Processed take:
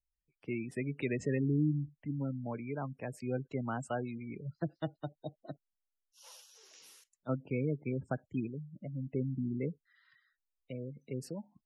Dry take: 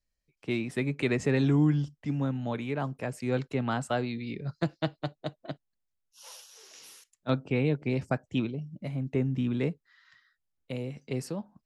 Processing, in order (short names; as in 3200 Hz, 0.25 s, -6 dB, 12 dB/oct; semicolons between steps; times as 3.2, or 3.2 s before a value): spectral gate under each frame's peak -20 dB strong; gain -6.5 dB